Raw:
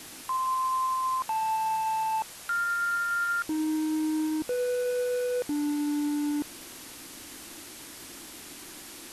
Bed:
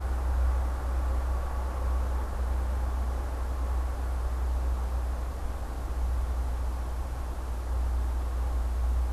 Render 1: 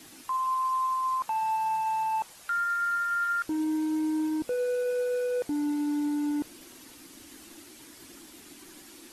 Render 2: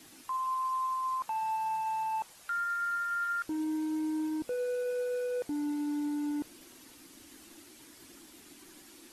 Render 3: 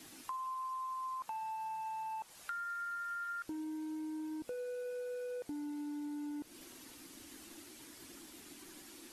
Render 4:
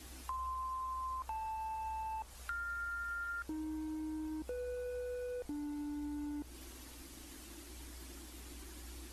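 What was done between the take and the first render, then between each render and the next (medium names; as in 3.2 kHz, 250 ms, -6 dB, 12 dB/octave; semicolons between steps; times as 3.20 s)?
noise reduction 8 dB, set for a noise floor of -45 dBFS
trim -4.5 dB
compression 10:1, threshold -39 dBFS, peak gain reduction 9.5 dB
add bed -24.5 dB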